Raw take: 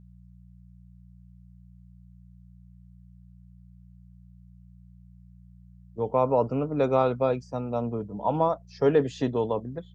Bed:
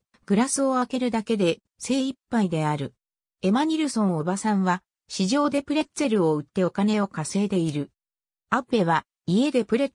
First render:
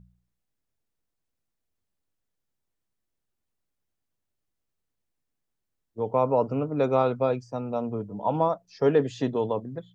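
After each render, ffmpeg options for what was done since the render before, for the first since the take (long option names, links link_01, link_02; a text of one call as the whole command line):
ffmpeg -i in.wav -af "bandreject=frequency=60:width_type=h:width=4,bandreject=frequency=120:width_type=h:width=4,bandreject=frequency=180:width_type=h:width=4" out.wav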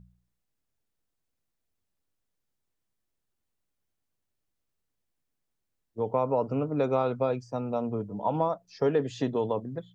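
ffmpeg -i in.wav -af "acompressor=threshold=-24dB:ratio=2" out.wav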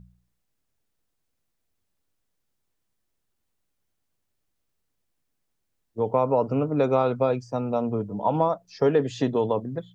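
ffmpeg -i in.wav -af "volume=4.5dB" out.wav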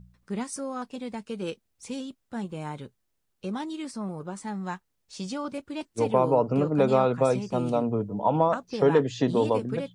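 ffmpeg -i in.wav -i bed.wav -filter_complex "[1:a]volume=-11dB[link_01];[0:a][link_01]amix=inputs=2:normalize=0" out.wav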